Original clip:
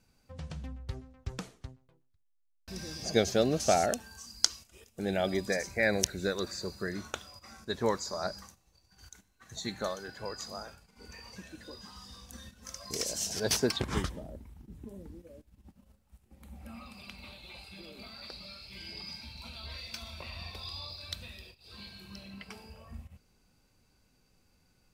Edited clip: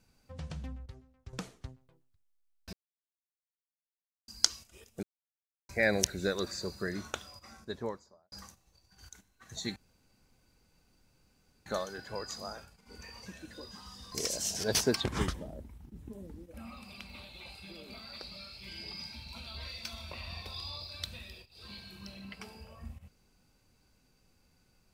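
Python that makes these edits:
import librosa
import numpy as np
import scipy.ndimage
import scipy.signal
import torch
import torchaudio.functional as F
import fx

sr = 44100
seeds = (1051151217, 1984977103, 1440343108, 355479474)

y = fx.studio_fade_out(x, sr, start_s=7.3, length_s=1.02)
y = fx.edit(y, sr, fx.clip_gain(start_s=0.86, length_s=0.47, db=-10.5),
    fx.silence(start_s=2.73, length_s=1.55),
    fx.silence(start_s=5.03, length_s=0.66),
    fx.insert_room_tone(at_s=9.76, length_s=1.9),
    fx.cut(start_s=12.22, length_s=0.66),
    fx.cut(start_s=15.3, length_s=1.33), tone=tone)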